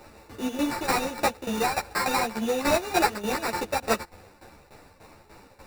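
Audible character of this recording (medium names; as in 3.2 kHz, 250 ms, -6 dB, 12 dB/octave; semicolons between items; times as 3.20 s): a buzz of ramps at a fixed pitch in blocks of 8 samples; tremolo saw down 3.4 Hz, depth 80%; aliases and images of a low sample rate 3.2 kHz, jitter 0%; a shimmering, thickened sound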